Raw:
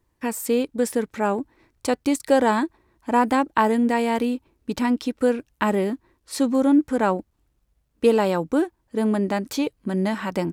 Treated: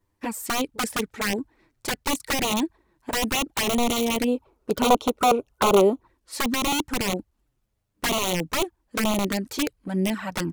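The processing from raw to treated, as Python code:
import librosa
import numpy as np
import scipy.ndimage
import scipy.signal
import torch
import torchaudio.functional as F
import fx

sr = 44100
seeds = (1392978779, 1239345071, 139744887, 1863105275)

y = (np.mod(10.0 ** (15.5 / 20.0) * x + 1.0, 2.0) - 1.0) / 10.0 ** (15.5 / 20.0)
y = fx.spec_box(y, sr, start_s=4.28, length_s=1.8, low_hz=370.0, high_hz=1500.0, gain_db=10)
y = fx.env_flanger(y, sr, rest_ms=10.2, full_db=-18.0)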